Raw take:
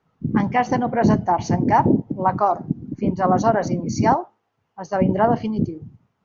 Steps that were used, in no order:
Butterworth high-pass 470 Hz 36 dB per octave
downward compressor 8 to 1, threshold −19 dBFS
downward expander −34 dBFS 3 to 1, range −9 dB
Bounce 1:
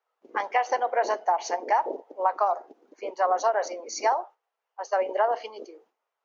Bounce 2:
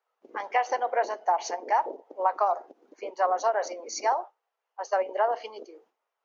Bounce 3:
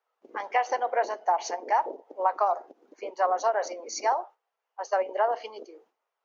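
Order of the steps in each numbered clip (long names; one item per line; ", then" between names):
downward expander, then Butterworth high-pass, then downward compressor
downward compressor, then downward expander, then Butterworth high-pass
downward expander, then downward compressor, then Butterworth high-pass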